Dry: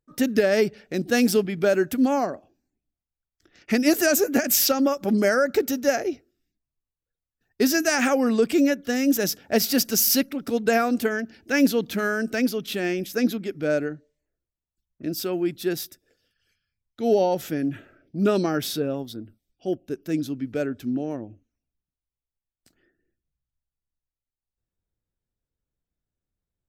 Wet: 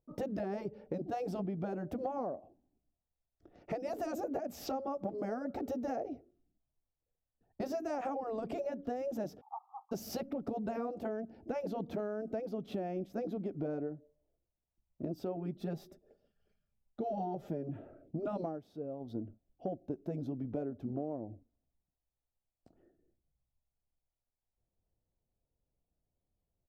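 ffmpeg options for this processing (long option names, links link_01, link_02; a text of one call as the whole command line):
ffmpeg -i in.wav -filter_complex "[0:a]asettb=1/sr,asplit=3[link_01][link_02][link_03];[link_01]atrim=end=0.434[link_04];[link_02]atrim=start=0.43:end=1,asetpts=PTS-STARTPTS,afade=type=in:duration=0.004:curve=qsin,afade=type=out:start_time=0.566:duration=0.004:curve=qsin,asuperstop=centerf=690:order=4:qfactor=4.9[link_05];[link_03]atrim=start=0.996[link_06];[link_04][link_05]acrossfade=duration=0.004:curve1=hsin:curve2=qsin[link_07];[link_07][link_06]acrossfade=duration=0.004:curve1=qsin:curve2=hsin,asplit=3[link_08][link_09][link_10];[link_08]afade=type=out:start_time=9.4:duration=0.02[link_11];[link_09]asuperpass=centerf=990:order=20:qfactor=2,afade=type=in:start_time=9.4:duration=0.02,afade=type=out:start_time=9.91:duration=0.02[link_12];[link_10]afade=type=in:start_time=9.91:duration=0.02[link_13];[link_11][link_12][link_13]amix=inputs=3:normalize=0,asettb=1/sr,asplit=3[link_14][link_15][link_16];[link_14]atrim=end=15.364[link_17];[link_15]atrim=start=15.36:end=17.69,asetpts=PTS-STARTPTS,afade=type=in:duration=0.004:curve=qsin,afade=type=out:start_time=2.326:duration=0.004:curve=qsin,aecho=1:1:5:0.59,atrim=end_sample=102753[link_18];[link_16]atrim=start=17.686[link_19];[link_17][link_18]acrossfade=duration=0.004:curve1=hsin:curve2=qsin[link_20];[link_20][link_19]acrossfade=duration=0.004:curve1=qsin:curve2=hsin,asplit=3[link_21][link_22][link_23];[link_21]atrim=end=18.6,asetpts=PTS-STARTPTS,afade=type=out:start_time=18.42:duration=0.18:silence=0.141254[link_24];[link_22]atrim=start=18.6:end=19,asetpts=PTS-STARTPTS,volume=-17dB[link_25];[link_23]atrim=start=19,asetpts=PTS-STARTPTS,afade=type=in:duration=0.18:silence=0.141254[link_26];[link_24][link_25][link_26]concat=n=3:v=0:a=1,afftfilt=real='re*lt(hypot(re,im),0.501)':imag='im*lt(hypot(re,im),0.501)':win_size=1024:overlap=0.75,firequalizer=gain_entry='entry(370,0);entry(680,6);entry(1600,-18);entry(9500,-29)':delay=0.05:min_phase=1,acompressor=threshold=-35dB:ratio=10,volume=1dB" out.wav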